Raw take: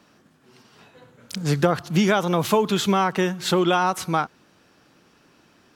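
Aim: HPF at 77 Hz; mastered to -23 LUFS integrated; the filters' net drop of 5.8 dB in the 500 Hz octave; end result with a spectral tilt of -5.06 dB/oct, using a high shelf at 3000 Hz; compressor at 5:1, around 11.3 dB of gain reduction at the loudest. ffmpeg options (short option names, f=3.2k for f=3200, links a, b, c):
-af "highpass=77,equalizer=f=500:t=o:g=-8,highshelf=f=3k:g=-5.5,acompressor=threshold=-30dB:ratio=5,volume=11dB"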